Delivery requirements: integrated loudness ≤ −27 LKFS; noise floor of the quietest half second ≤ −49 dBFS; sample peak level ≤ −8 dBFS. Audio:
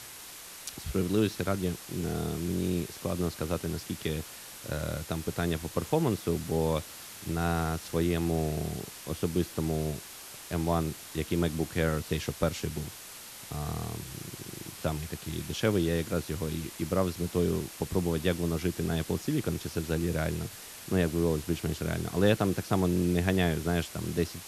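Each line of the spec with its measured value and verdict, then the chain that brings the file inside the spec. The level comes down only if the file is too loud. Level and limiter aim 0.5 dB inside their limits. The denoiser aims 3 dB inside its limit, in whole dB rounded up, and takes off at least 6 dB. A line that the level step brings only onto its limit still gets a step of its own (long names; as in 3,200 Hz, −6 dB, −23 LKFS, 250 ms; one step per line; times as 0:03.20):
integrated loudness −31.0 LKFS: in spec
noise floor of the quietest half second −46 dBFS: out of spec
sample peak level −10.5 dBFS: in spec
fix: broadband denoise 6 dB, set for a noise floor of −46 dBFS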